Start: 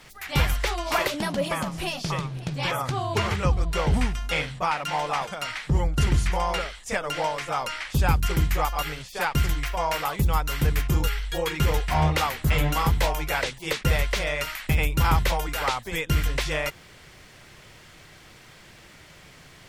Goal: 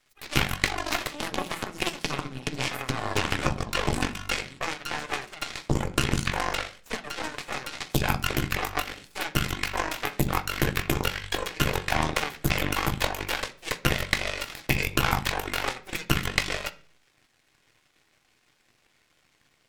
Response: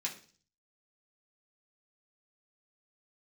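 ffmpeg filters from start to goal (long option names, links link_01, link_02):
-filter_complex "[0:a]acrossover=split=120|4200[link_01][link_02][link_03];[link_01]acompressor=threshold=-31dB:ratio=4[link_04];[link_02]acompressor=threshold=-30dB:ratio=4[link_05];[link_03]acompressor=threshold=-44dB:ratio=4[link_06];[link_04][link_05][link_06]amix=inputs=3:normalize=0,aeval=exprs='0.266*(cos(1*acos(clip(val(0)/0.266,-1,1)))-cos(1*PI/2))+0.00841*(cos(3*acos(clip(val(0)/0.266,-1,1)))-cos(3*PI/2))+0.0668*(cos(4*acos(clip(val(0)/0.266,-1,1)))-cos(4*PI/2))+0.0335*(cos(7*acos(clip(val(0)/0.266,-1,1)))-cos(7*PI/2))':channel_layout=same,asplit=2[link_07][link_08];[1:a]atrim=start_sample=2205,highshelf=frequency=7100:gain=-9.5[link_09];[link_08][link_09]afir=irnorm=-1:irlink=0,volume=-5dB[link_10];[link_07][link_10]amix=inputs=2:normalize=0,volume=7dB"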